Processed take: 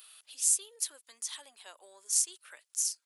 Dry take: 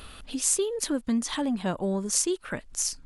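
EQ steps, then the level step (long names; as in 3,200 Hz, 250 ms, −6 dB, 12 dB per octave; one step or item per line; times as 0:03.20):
high-pass filter 410 Hz 24 dB per octave
first difference
−2.0 dB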